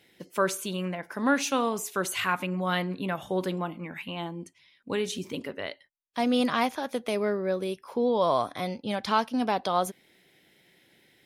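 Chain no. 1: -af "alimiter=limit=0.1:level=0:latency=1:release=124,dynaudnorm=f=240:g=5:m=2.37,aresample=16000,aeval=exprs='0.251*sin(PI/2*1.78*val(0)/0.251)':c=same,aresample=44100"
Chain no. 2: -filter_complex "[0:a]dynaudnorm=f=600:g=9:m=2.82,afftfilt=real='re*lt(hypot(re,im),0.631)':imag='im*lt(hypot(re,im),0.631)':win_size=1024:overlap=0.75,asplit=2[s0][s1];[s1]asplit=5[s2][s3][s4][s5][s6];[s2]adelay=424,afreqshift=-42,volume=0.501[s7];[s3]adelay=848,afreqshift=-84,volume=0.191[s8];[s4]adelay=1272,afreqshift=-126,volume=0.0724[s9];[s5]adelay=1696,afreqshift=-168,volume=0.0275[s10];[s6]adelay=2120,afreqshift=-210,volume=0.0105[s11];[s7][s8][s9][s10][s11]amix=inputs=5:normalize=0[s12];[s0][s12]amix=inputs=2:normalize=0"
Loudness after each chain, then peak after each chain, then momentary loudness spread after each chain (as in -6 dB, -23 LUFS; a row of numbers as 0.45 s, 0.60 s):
-18.5 LUFS, -26.0 LUFS; -8.0 dBFS, -6.0 dBFS; 7 LU, 8 LU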